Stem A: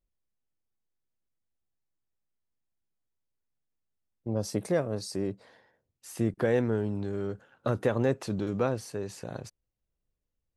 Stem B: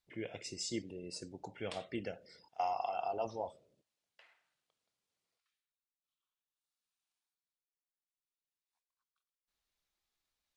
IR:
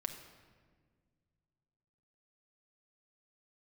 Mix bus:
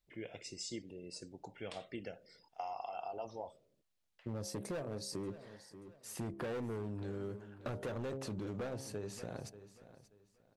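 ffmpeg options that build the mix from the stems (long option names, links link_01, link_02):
-filter_complex "[0:a]bandreject=frequency=67.06:width_type=h:width=4,bandreject=frequency=134.12:width_type=h:width=4,bandreject=frequency=201.18:width_type=h:width=4,bandreject=frequency=268.24:width_type=h:width=4,bandreject=frequency=335.3:width_type=h:width=4,bandreject=frequency=402.36:width_type=h:width=4,bandreject=frequency=469.42:width_type=h:width=4,bandreject=frequency=536.48:width_type=h:width=4,bandreject=frequency=603.54:width_type=h:width=4,bandreject=frequency=670.6:width_type=h:width=4,bandreject=frequency=737.66:width_type=h:width=4,bandreject=frequency=804.72:width_type=h:width=4,bandreject=frequency=871.78:width_type=h:width=4,bandreject=frequency=938.84:width_type=h:width=4,volume=27.5dB,asoftclip=hard,volume=-27.5dB,volume=-3dB,asplit=2[link_01][link_02];[link_02]volume=-17.5dB[link_03];[1:a]volume=-3dB[link_04];[link_03]aecho=0:1:583|1166|1749|2332:1|0.26|0.0676|0.0176[link_05];[link_01][link_04][link_05]amix=inputs=3:normalize=0,acompressor=threshold=-38dB:ratio=6"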